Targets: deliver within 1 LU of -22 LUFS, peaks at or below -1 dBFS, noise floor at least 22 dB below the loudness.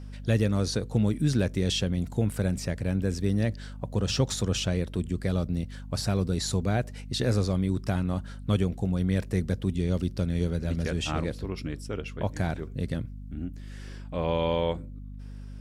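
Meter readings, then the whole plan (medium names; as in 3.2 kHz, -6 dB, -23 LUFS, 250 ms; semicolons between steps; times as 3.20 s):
hum 50 Hz; highest harmonic 250 Hz; hum level -38 dBFS; loudness -29.0 LUFS; peak level -11.5 dBFS; loudness target -22.0 LUFS
-> hum notches 50/100/150/200/250 Hz; trim +7 dB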